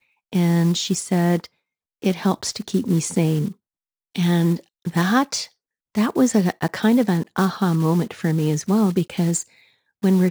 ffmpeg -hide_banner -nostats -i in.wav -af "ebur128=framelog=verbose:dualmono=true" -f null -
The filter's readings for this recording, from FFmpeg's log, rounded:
Integrated loudness:
  I:         -18.0 LUFS
  Threshold: -28.3 LUFS
Loudness range:
  LRA:         2.7 LU
  Threshold: -38.5 LUFS
  LRA low:   -20.0 LUFS
  LRA high:  -17.2 LUFS